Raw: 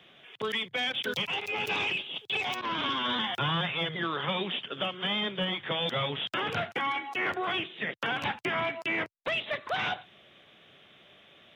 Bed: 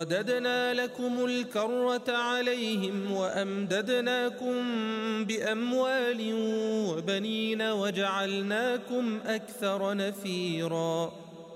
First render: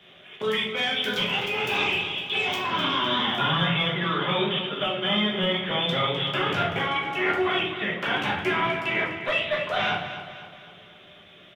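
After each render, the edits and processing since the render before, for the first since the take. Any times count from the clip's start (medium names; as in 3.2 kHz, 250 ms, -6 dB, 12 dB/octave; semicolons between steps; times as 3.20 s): feedback delay 254 ms, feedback 47%, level -11 dB; simulated room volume 91 m³, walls mixed, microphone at 1.3 m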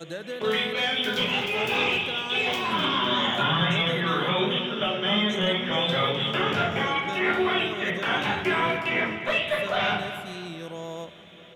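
add bed -6.5 dB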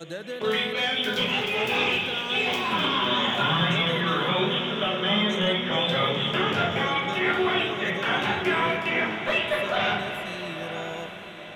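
echo that smears into a reverb 969 ms, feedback 44%, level -10.5 dB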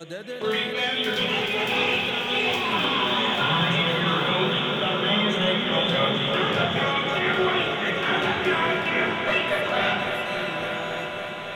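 backward echo that repeats 269 ms, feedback 77%, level -12 dB; multi-head delay 279 ms, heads all three, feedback 68%, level -15.5 dB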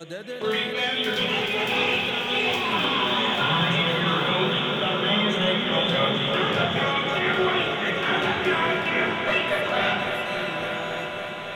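no audible change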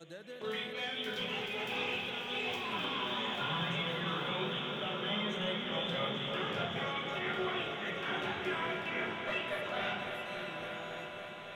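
trim -13 dB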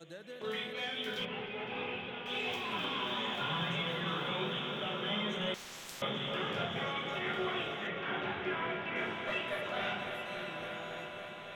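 1.25–2.26 s: distance through air 330 m; 5.54–6.02 s: spectrum-flattening compressor 10:1; 7.87–8.96 s: low-pass 3.2 kHz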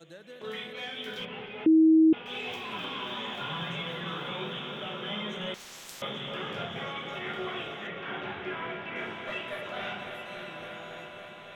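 1.66–2.13 s: bleep 319 Hz -15.5 dBFS; 5.60–6.21 s: tone controls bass -2 dB, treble +3 dB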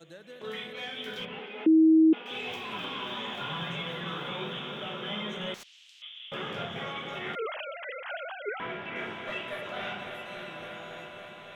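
1.39–2.31 s: steep high-pass 200 Hz; 5.63–6.32 s: ladder band-pass 3.3 kHz, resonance 60%; 7.35–8.60 s: formants replaced by sine waves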